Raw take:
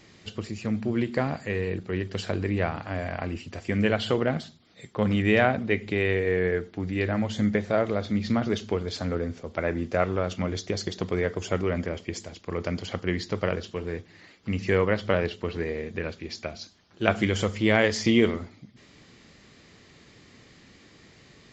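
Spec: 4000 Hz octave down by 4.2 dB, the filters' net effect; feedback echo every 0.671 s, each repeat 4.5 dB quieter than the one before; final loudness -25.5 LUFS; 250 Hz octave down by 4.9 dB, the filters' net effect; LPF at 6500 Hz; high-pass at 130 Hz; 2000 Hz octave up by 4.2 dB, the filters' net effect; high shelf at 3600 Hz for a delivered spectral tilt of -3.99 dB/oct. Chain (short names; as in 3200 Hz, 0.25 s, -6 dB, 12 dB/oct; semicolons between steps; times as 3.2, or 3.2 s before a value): HPF 130 Hz; LPF 6500 Hz; bell 250 Hz -6 dB; bell 2000 Hz +8 dB; high shelf 3600 Hz -8 dB; bell 4000 Hz -4 dB; feedback echo 0.671 s, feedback 60%, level -4.5 dB; gain +1.5 dB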